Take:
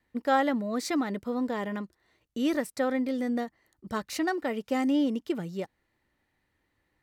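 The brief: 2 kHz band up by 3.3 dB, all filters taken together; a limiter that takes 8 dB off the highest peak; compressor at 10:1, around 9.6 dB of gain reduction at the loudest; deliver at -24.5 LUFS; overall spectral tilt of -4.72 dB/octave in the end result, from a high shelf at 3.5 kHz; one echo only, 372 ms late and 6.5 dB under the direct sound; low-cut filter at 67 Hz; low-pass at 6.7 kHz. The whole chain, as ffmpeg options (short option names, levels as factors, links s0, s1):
-af "highpass=67,lowpass=6700,equalizer=f=2000:t=o:g=3,highshelf=f=3500:g=3.5,acompressor=threshold=0.0447:ratio=10,alimiter=level_in=1.26:limit=0.0631:level=0:latency=1,volume=0.794,aecho=1:1:372:0.473,volume=3.16"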